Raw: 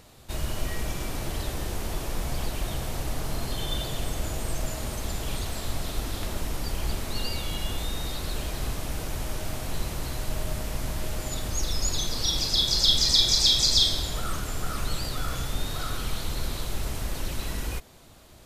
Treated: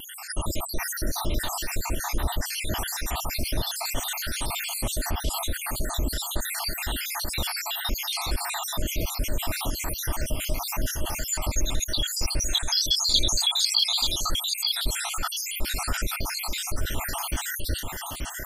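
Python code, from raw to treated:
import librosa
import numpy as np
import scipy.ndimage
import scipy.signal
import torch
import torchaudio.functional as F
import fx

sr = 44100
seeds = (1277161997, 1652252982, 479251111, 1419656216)

y = fx.spec_dropout(x, sr, seeds[0], share_pct=79)
y = fx.high_shelf(y, sr, hz=12000.0, db=5.5)
y = y + 10.0 ** (-8.5 / 20.0) * np.pad(y, (int(883 * sr / 1000.0), 0))[:len(y)]
y = fx.vibrato(y, sr, rate_hz=1.8, depth_cents=32.0)
y = y + 0.33 * np.pad(y, (int(3.3 * sr / 1000.0), 0))[:len(y)]
y = fx.env_flatten(y, sr, amount_pct=50)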